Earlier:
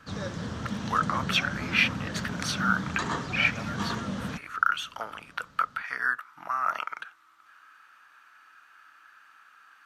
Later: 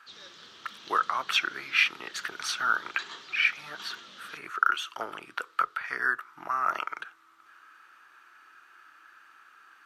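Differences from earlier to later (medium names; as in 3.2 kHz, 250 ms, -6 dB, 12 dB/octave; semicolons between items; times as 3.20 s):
background: add band-pass filter 3.6 kHz, Q 2; master: add peaking EQ 370 Hz +12.5 dB 0.41 oct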